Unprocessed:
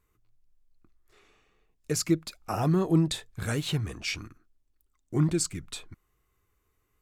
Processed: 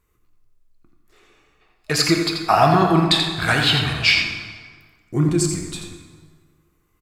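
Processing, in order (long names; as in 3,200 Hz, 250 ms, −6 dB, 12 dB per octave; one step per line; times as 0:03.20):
gain on a spectral selection 0:01.61–0:04.18, 620–5,300 Hz +12 dB
single-tap delay 85 ms −7 dB
dense smooth reverb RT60 1.7 s, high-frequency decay 0.65×, DRR 4 dB
level +4.5 dB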